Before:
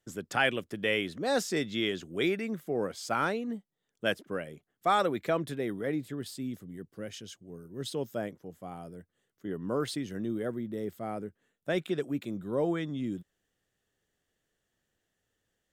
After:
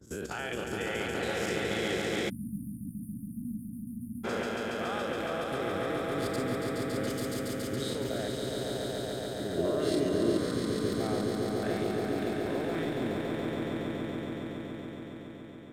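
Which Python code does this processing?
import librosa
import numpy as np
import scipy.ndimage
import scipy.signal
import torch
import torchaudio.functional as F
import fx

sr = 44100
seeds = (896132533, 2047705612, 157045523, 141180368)

y = fx.spec_dilate(x, sr, span_ms=120)
y = fx.transient(y, sr, attack_db=2, sustain_db=-10)
y = fx.level_steps(y, sr, step_db=18)
y = fx.peak_eq(y, sr, hz=63.0, db=14.5, octaves=0.62)
y = fx.echo_swell(y, sr, ms=140, loudest=5, wet_db=-4.0)
y = fx.spec_erase(y, sr, start_s=2.29, length_s=1.95, low_hz=300.0, high_hz=9100.0)
y = fx.high_shelf(y, sr, hz=7100.0, db=7.5, at=(7.1, 7.75))
y = fx.small_body(y, sr, hz=(360.0, 610.0, 2800.0), ring_ms=45, db=12, at=(9.57, 10.38))
y = y * librosa.db_to_amplitude(-1.0)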